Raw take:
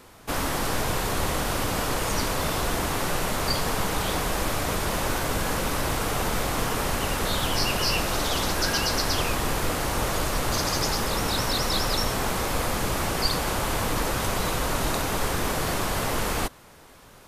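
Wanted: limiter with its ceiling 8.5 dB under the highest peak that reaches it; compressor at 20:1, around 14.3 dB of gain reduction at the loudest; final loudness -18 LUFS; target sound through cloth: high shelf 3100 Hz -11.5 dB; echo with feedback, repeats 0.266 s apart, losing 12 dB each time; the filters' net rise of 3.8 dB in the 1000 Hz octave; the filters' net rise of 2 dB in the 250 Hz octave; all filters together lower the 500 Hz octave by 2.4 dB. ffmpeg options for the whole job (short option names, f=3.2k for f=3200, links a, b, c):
-af "equalizer=f=250:t=o:g=4,equalizer=f=500:t=o:g=-6,equalizer=f=1k:t=o:g=7.5,acompressor=threshold=-33dB:ratio=20,alimiter=level_in=7dB:limit=-24dB:level=0:latency=1,volume=-7dB,highshelf=f=3.1k:g=-11.5,aecho=1:1:266|532|798:0.251|0.0628|0.0157,volume=24.5dB"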